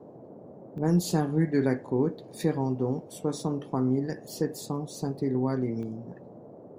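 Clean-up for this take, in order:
repair the gap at 0:00.78/0:05.83, 1 ms
noise reduction from a noise print 26 dB

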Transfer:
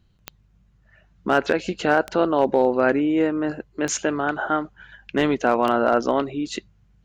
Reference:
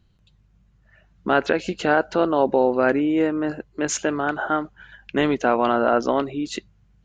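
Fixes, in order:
clipped peaks rebuilt −8 dBFS
click removal

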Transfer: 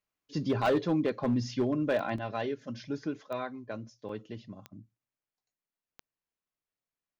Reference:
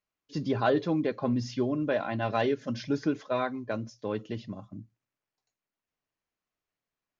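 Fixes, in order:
clipped peaks rebuilt −21 dBFS
click removal
repair the gap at 0:02.18/0:04.09, 3.2 ms
level 0 dB, from 0:02.16 +6.5 dB

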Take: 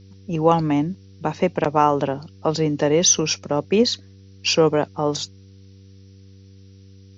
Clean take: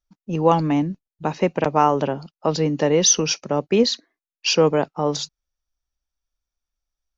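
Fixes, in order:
hum removal 96.9 Hz, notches 5
broadband denoise 30 dB, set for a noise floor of −46 dBFS

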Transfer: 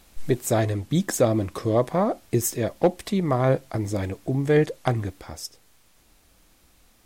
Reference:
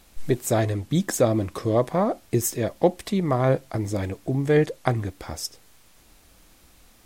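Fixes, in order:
clipped peaks rebuilt −9 dBFS
level correction +4 dB, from 0:05.20

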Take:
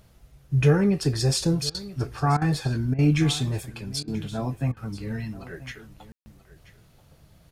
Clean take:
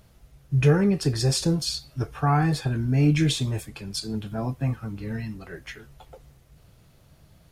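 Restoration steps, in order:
ambience match 0:06.12–0:06.26
repair the gap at 0:01.70/0:02.37/0:02.94/0:04.03/0:04.72, 45 ms
echo removal 983 ms −17.5 dB

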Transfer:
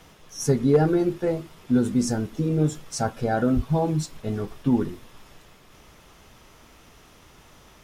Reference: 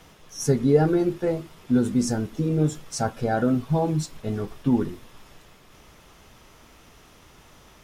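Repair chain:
clipped peaks rebuilt −10 dBFS
0:03.55–0:03.67: high-pass filter 140 Hz 24 dB per octave

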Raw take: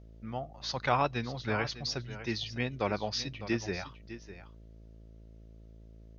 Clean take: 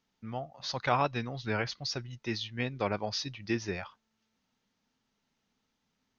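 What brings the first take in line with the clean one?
hum removal 55 Hz, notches 12
echo removal 604 ms −13.5 dB

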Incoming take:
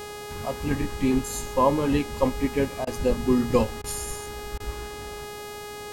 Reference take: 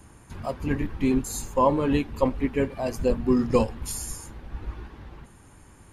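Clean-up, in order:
hum removal 415.4 Hz, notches 38
repair the gap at 0:02.85/0:03.82/0:04.58, 19 ms
noise reduction from a noise print 13 dB

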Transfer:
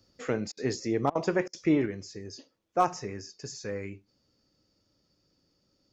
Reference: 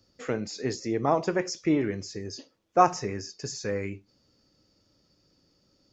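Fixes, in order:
clipped peaks rebuilt −13.5 dBFS
repair the gap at 0:00.52/0:01.10/0:01.48, 51 ms
level 0 dB, from 0:01.86 +5 dB

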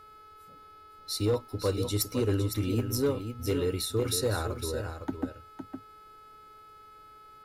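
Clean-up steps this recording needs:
clipped peaks rebuilt −20 dBFS
hum removal 425.2 Hz, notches 12
notch filter 1,300 Hz, Q 30
echo removal 509 ms −8.5 dB

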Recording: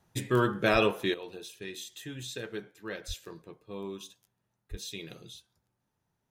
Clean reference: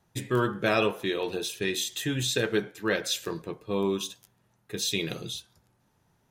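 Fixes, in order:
high-pass at the plosives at 0:00.72/0:03.07/0:04.70
level correction +12 dB, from 0:01.14

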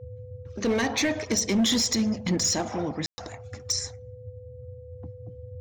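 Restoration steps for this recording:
clipped peaks rebuilt −18.5 dBFS
notch filter 500 Hz, Q 30
ambience match 0:03.06–0:03.18
noise reduction from a noise print 29 dB

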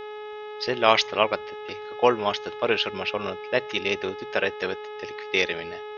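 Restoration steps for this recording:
hum removal 422.7 Hz, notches 9
downward expander −29 dBFS, range −21 dB

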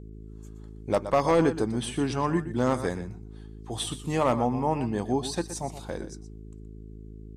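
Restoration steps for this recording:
clipped peaks rebuilt −14 dBFS
hum removal 53.5 Hz, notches 8
echo removal 121 ms −12.5 dB

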